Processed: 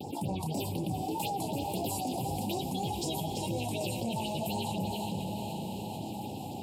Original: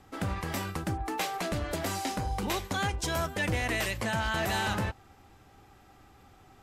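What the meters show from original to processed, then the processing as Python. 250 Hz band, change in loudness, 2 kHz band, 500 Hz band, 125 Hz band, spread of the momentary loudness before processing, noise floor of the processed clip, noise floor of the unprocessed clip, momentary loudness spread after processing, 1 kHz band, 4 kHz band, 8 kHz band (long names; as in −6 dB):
+2.0 dB, −3.0 dB, −15.5 dB, −1.0 dB, −1.0 dB, 5 LU, −40 dBFS, −58 dBFS, 5 LU, −1.0 dB, −2.5 dB, −1.5 dB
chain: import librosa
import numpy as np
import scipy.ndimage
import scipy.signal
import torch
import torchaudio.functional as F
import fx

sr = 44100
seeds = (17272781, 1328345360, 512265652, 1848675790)

p1 = fx.vibrato(x, sr, rate_hz=1.8, depth_cents=80.0)
p2 = fx.peak_eq(p1, sr, hz=6100.0, db=-12.0, octaves=0.26)
p3 = fx.chorus_voices(p2, sr, voices=2, hz=1.1, base_ms=30, depth_ms=3.0, mix_pct=40)
p4 = fx.tremolo_random(p3, sr, seeds[0], hz=3.5, depth_pct=55)
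p5 = scipy.signal.sosfilt(scipy.signal.butter(4, 120.0, 'highpass', fs=sr, output='sos'), p4)
p6 = fx.phaser_stages(p5, sr, stages=4, low_hz=380.0, high_hz=3300.0, hz=4.0, feedback_pct=25)
p7 = 10.0 ** (-35.0 / 20.0) * np.tanh(p6 / 10.0 ** (-35.0 / 20.0))
p8 = p6 + (p7 * 10.0 ** (-5.0 / 20.0))
p9 = scipy.signal.sosfilt(scipy.signal.ellip(3, 1.0, 40, [870.0, 2700.0], 'bandstop', fs=sr, output='sos'), p8)
p10 = p9 + fx.echo_single(p9, sr, ms=337, db=-9.0, dry=0)
p11 = fx.rider(p10, sr, range_db=10, speed_s=0.5)
p12 = fx.echo_diffused(p11, sr, ms=502, feedback_pct=45, wet_db=-10)
y = fx.env_flatten(p12, sr, amount_pct=70)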